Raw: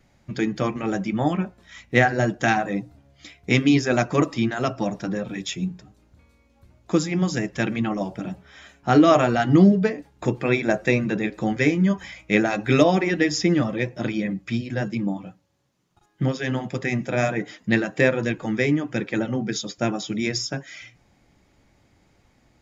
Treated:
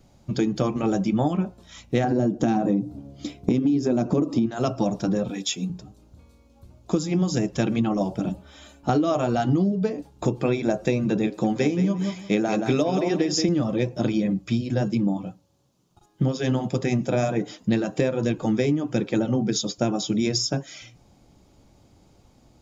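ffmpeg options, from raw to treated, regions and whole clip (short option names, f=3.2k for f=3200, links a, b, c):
-filter_complex "[0:a]asettb=1/sr,asplit=3[a][b][c];[a]atrim=end=2.044[d];[b]atrim=start=2.04:end=4.46,asetpts=PTS-STARTPTS,afade=t=in:d=0.004:c=qsin,afade=t=out:st=2.416:d=0.004:c=qsin,equalizer=f=260:t=o:w=2.1:g=15,acompressor=threshold=-14dB:ratio=2.5:attack=3.2:release=140:knee=1:detection=peak[e];[c]atrim=start=4.456[f];[d][e]acrossfade=d=0.004:c1=hsin:c2=qsin[g];[g][f]acrossfade=d=0.004:c1=qsin:c2=hsin,asettb=1/sr,asplit=3[h][i][j];[h]atrim=end=5.304[k];[i]atrim=start=5.3:end=5.7,asetpts=PTS-STARTPTS,afade=t=in:d=0.004:c=qsin,afade=t=out:st=0.396:d=0.004:c=qsin,highpass=f=450:p=1,aecho=1:1:4.1:0.49,atrim=end_sample=17640[l];[j]atrim=start=5.696[m];[k][l]acrossfade=d=0.004:c1=hsin:c2=qsin[n];[n][m]acrossfade=d=0.004:c1=qsin:c2=hsin,asettb=1/sr,asplit=3[o][p][q];[o]atrim=end=8.294[r];[p]atrim=start=8.29:end=8.89,asetpts=PTS-STARTPTS,afade=t=in:d=0.004:c=qsin,afade=t=out:st=0.596:d=0.004:c=qsin,equalizer=f=5.6k:w=5.1:g=-6.5,aecho=1:1:3.4:0.48,atrim=end_sample=26460,acrossover=split=340|3000[s][t][u];[t]acompressor=threshold=-49dB:ratio=1.5:attack=3.2:release=140:knee=2.83:detection=peak[v];[s][v][u]amix=inputs=3:normalize=0[w];[q]atrim=start=8.886[x];[r][w]acrossfade=d=0.004:c1=hsin:c2=qsin[y];[y][x]acrossfade=d=0.004:c1=qsin:c2=hsin,asettb=1/sr,asplit=3[z][aa][ab];[z]atrim=end=11.274[ac];[aa]atrim=start=11.27:end=13.49,asetpts=PTS-STARTPTS,afade=t=in:d=0.004:c=qsin,afade=t=out:st=2.216:d=0.004:c=qsin,highpass=130,aecho=1:1:174|348:0.335|0.0569,atrim=end_sample=97902[ad];[ab]atrim=start=13.486[ae];[ac][ad]acrossfade=d=0.004:c1=hsin:c2=qsin[af];[af][ae]acrossfade=d=0.004:c1=qsin:c2=hsin,equalizer=f=1.9k:w=1.6:g=-13.5,acompressor=threshold=-23dB:ratio=12,volume=5dB"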